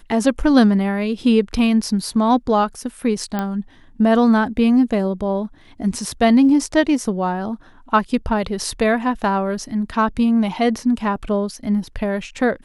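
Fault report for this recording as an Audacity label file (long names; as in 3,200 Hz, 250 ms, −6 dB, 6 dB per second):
3.390000	3.390000	click −10 dBFS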